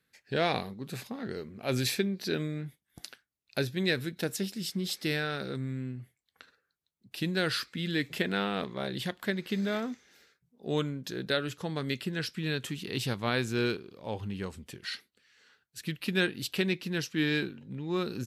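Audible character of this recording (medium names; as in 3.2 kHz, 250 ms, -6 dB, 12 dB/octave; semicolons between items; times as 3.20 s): noise floor -83 dBFS; spectral tilt -4.0 dB/octave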